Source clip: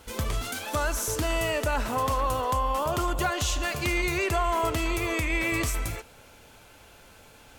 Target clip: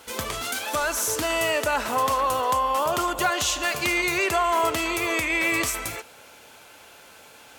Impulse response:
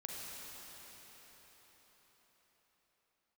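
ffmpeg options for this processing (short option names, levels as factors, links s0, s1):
-filter_complex "[0:a]highpass=f=450:p=1,asettb=1/sr,asplit=3[s0][s1][s2];[s0]atrim=end=0.594[s3];[s1]atrim=start=0.59:end=1.3,asetpts=PTS-STARTPTS,afade=t=in:d=0.004:c=qsin,afade=t=out:st=0.706:d=0.004:c=qsin,asoftclip=type=hard:threshold=0.0596[s4];[s2]atrim=start=1.296[s5];[s3][s4]acrossfade=d=0.004:c1=hsin:c2=qsin[s6];[s6][s5]acrossfade=d=0.004:c1=qsin:c2=hsin,volume=1.88"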